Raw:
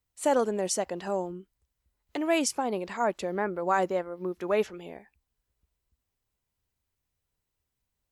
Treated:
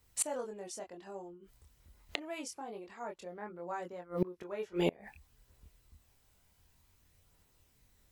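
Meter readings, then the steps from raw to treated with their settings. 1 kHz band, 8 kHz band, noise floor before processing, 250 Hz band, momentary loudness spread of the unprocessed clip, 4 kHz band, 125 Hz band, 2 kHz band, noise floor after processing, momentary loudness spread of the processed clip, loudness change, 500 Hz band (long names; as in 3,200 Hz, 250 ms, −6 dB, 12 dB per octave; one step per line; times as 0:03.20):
−14.0 dB, −5.5 dB, −84 dBFS, −8.5 dB, 11 LU, −7.0 dB, −2.5 dB, −11.5 dB, −70 dBFS, 13 LU, −10.5 dB, −11.5 dB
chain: multi-voice chorus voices 2, 0.27 Hz, delay 24 ms, depth 1.5 ms
gate with flip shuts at −34 dBFS, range −29 dB
level +17 dB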